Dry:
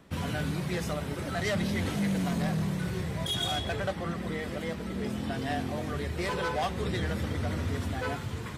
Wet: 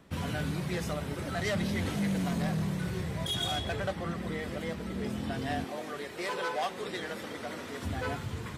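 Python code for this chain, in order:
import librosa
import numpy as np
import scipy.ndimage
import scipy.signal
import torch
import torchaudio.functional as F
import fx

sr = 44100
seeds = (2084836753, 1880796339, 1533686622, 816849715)

y = fx.highpass(x, sr, hz=330.0, slope=12, at=(5.64, 7.83))
y = y * librosa.db_to_amplitude(-1.5)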